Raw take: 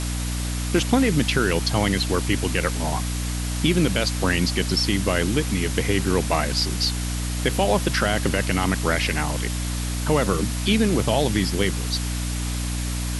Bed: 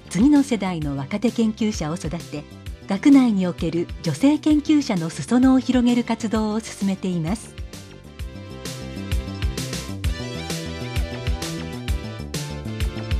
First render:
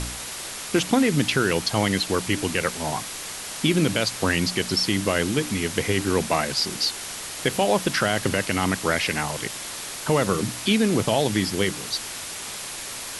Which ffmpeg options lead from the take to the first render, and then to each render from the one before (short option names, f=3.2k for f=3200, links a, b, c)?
-af "bandreject=f=60:t=h:w=4,bandreject=f=120:t=h:w=4,bandreject=f=180:t=h:w=4,bandreject=f=240:t=h:w=4,bandreject=f=300:t=h:w=4"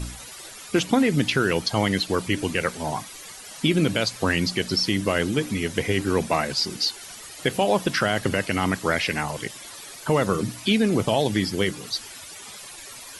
-af "afftdn=nr=13:nf=-35"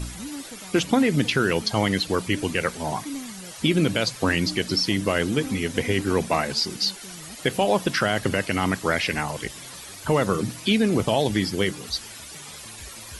-filter_complex "[1:a]volume=-21dB[a];[0:a][a]amix=inputs=2:normalize=0"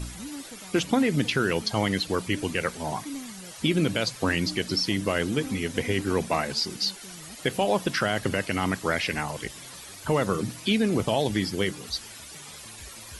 -af "volume=-3dB"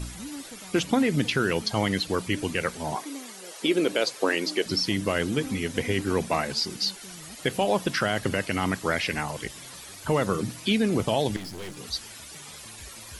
-filter_complex "[0:a]asettb=1/sr,asplit=3[a][b][c];[a]atrim=end=2.954[d];[b]atrim=start=2.95:end=4.66,asetpts=PTS-STARTPTS,afade=t=in:d=0.004:c=qsin,afade=t=out:st=1.706:d=0.004:c=qsin,highpass=f=400:t=q:w=1.9[e];[c]atrim=start=4.656[f];[d][e]acrossfade=d=0.004:c1=hsin:c2=qsin[g];[g][f]acrossfade=d=0.004:c1=qsin:c2=hsin,asettb=1/sr,asplit=3[h][i][j];[h]atrim=end=11.364[k];[i]atrim=start=11.36:end=11.77,asetpts=PTS-STARTPTS,afade=t=in:d=0.004:c=qsin,afade=t=out:st=0.406:d=0.004:c=qsin,aeval=exprs='(tanh(56.2*val(0)+0.65)-tanh(0.65))/56.2':c=same[l];[j]atrim=start=11.766[m];[k][l]acrossfade=d=0.004:c1=hsin:c2=qsin[n];[n][m]acrossfade=d=0.004:c1=qsin:c2=hsin"